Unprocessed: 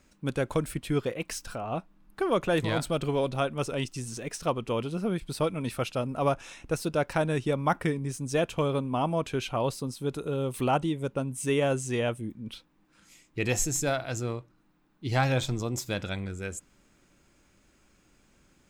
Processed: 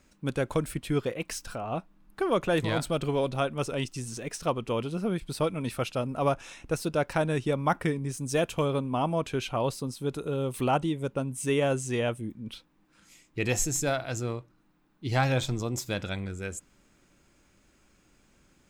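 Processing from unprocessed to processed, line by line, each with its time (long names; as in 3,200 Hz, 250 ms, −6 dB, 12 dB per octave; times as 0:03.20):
0:08.17–0:08.65: high-shelf EQ 7,500 Hz +7 dB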